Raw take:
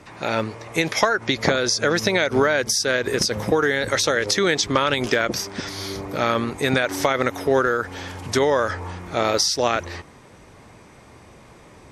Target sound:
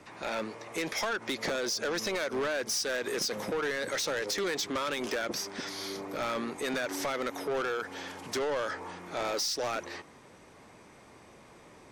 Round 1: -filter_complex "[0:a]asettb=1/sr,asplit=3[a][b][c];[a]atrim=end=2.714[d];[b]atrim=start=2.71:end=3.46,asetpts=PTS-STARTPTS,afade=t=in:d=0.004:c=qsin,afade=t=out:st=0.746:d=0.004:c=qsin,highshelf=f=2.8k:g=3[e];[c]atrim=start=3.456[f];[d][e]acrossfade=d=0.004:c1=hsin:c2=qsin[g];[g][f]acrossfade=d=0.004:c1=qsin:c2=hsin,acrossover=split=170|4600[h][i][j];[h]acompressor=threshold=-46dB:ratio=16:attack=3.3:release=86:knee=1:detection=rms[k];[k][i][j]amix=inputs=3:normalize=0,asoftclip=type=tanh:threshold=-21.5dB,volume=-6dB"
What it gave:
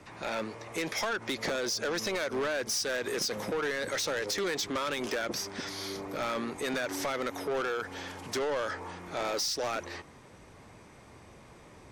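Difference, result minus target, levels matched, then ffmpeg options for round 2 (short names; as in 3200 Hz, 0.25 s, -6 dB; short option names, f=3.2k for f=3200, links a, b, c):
compressor: peak gain reduction -11 dB
-filter_complex "[0:a]asettb=1/sr,asplit=3[a][b][c];[a]atrim=end=2.714[d];[b]atrim=start=2.71:end=3.46,asetpts=PTS-STARTPTS,afade=t=in:d=0.004:c=qsin,afade=t=out:st=0.746:d=0.004:c=qsin,highshelf=f=2.8k:g=3[e];[c]atrim=start=3.456[f];[d][e]acrossfade=d=0.004:c1=hsin:c2=qsin[g];[g][f]acrossfade=d=0.004:c1=qsin:c2=hsin,acrossover=split=170|4600[h][i][j];[h]acompressor=threshold=-58dB:ratio=16:attack=3.3:release=86:knee=1:detection=rms[k];[k][i][j]amix=inputs=3:normalize=0,asoftclip=type=tanh:threshold=-21.5dB,volume=-6dB"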